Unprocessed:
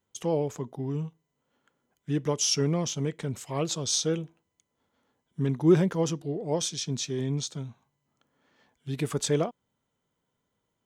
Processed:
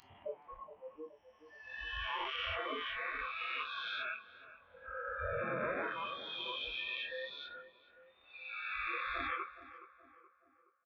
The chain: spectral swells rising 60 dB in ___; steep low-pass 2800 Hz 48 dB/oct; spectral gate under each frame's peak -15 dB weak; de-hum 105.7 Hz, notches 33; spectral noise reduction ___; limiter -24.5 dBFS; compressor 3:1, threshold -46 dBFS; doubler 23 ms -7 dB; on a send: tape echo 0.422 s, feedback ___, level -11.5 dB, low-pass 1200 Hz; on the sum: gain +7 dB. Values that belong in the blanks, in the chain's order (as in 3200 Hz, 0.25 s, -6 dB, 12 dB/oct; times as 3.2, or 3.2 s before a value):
2.90 s, 27 dB, 57%